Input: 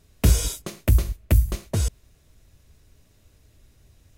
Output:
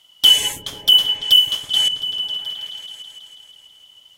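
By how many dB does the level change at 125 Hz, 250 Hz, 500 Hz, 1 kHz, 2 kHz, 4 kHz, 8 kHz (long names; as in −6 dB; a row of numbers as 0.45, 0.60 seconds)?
below −20 dB, below −10 dB, can't be measured, +3.5 dB, +5.0 dB, +27.5 dB, +4.0 dB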